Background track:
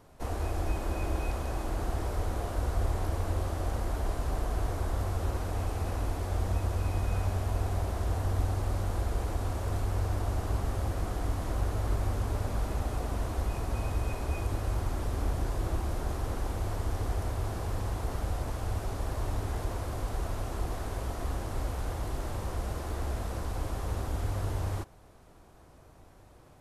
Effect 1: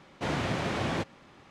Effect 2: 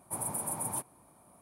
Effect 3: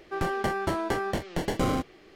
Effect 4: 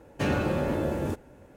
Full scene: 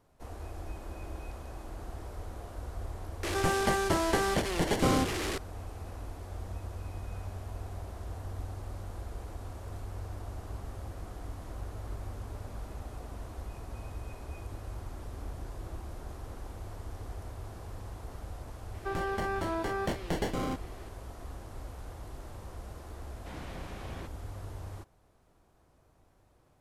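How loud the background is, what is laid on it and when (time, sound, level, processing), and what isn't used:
background track -10 dB
3.23 add 3 + delta modulation 64 kbps, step -28 dBFS
18.74 add 3 -1 dB + limiter -24 dBFS
23.04 add 1 -15 dB
not used: 2, 4

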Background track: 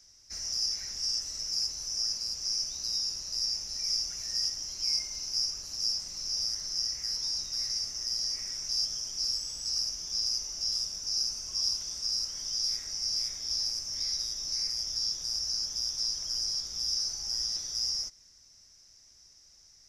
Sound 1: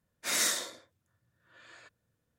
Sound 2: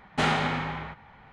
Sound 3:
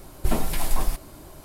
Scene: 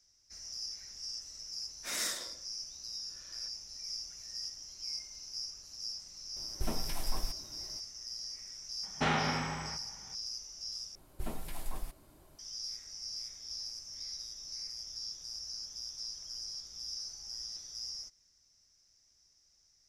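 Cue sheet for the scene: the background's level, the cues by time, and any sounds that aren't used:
background track -10.5 dB
1.6 add 1 -7.5 dB
6.36 add 3 -12 dB
8.83 add 2 -5.5 dB + air absorption 54 m
10.95 replace with 3 -16 dB

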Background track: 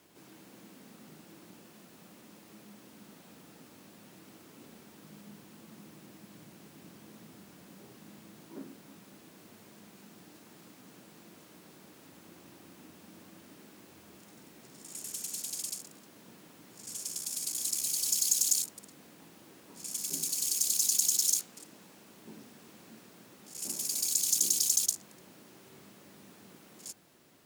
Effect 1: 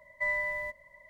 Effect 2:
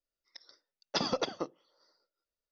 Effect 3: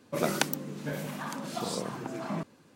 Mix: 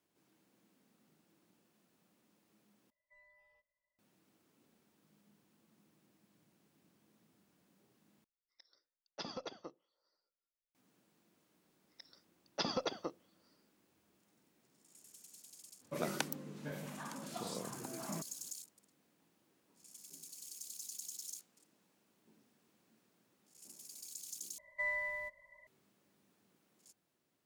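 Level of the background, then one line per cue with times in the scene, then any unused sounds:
background track -19.5 dB
2.9 replace with 1 -17.5 dB + spectral noise reduction 19 dB
8.24 replace with 2 -13.5 dB
11.64 add 2 -5.5 dB
15.79 add 3 -9.5 dB, fades 0.05 s
24.58 replace with 1 -6 dB + low shelf 440 Hz -6 dB

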